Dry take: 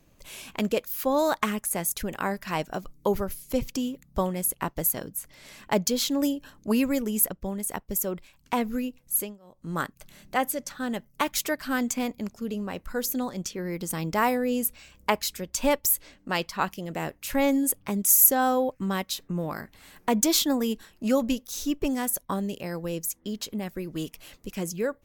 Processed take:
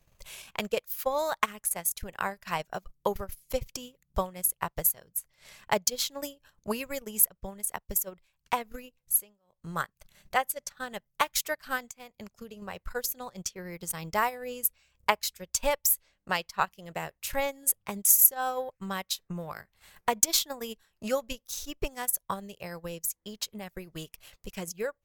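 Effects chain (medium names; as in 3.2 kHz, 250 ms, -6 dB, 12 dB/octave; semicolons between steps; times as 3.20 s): peaking EQ 270 Hz -14.5 dB 0.87 oct; 11.88–12.62 s: compression 6:1, threshold -39 dBFS, peak gain reduction 12.5 dB; transient shaper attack +6 dB, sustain -12 dB; trim -4 dB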